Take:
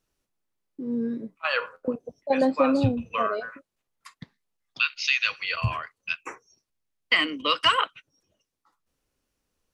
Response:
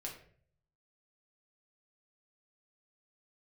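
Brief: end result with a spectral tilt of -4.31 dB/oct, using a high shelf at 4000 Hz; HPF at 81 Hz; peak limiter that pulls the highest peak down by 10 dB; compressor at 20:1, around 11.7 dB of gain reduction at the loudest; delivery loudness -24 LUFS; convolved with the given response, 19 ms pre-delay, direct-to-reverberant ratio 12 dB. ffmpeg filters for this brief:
-filter_complex "[0:a]highpass=81,highshelf=f=4k:g=5,acompressor=threshold=-26dB:ratio=20,alimiter=limit=-22dB:level=0:latency=1,asplit=2[a][b];[1:a]atrim=start_sample=2205,adelay=19[c];[b][c]afir=irnorm=-1:irlink=0,volume=-10.5dB[d];[a][d]amix=inputs=2:normalize=0,volume=10dB"

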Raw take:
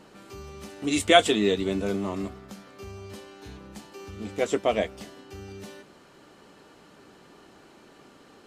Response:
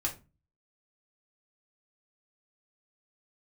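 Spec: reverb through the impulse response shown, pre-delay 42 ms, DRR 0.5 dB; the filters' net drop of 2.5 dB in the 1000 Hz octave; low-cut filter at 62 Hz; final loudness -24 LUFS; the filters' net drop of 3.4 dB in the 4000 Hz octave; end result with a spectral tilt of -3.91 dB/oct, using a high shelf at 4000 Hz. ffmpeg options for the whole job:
-filter_complex "[0:a]highpass=62,equalizer=f=1k:t=o:g=-5,highshelf=f=4k:g=7.5,equalizer=f=4k:t=o:g=-8,asplit=2[a][b];[1:a]atrim=start_sample=2205,adelay=42[c];[b][c]afir=irnorm=-1:irlink=0,volume=-4dB[d];[a][d]amix=inputs=2:normalize=0,volume=-1dB"

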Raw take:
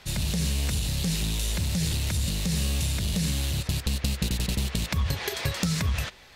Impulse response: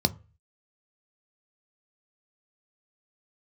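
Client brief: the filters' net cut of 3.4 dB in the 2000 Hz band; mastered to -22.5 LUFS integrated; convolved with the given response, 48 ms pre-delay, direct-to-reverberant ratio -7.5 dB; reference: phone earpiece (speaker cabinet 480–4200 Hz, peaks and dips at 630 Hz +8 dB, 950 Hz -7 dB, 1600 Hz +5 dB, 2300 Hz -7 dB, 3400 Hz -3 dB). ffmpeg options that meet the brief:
-filter_complex "[0:a]equalizer=f=2k:t=o:g=-3.5,asplit=2[a][b];[1:a]atrim=start_sample=2205,adelay=48[c];[b][c]afir=irnorm=-1:irlink=0,volume=-2.5dB[d];[a][d]amix=inputs=2:normalize=0,highpass=480,equalizer=f=630:t=q:w=4:g=8,equalizer=f=950:t=q:w=4:g=-7,equalizer=f=1.6k:t=q:w=4:g=5,equalizer=f=2.3k:t=q:w=4:g=-7,equalizer=f=3.4k:t=q:w=4:g=-3,lowpass=f=4.2k:w=0.5412,lowpass=f=4.2k:w=1.3066,volume=4dB"

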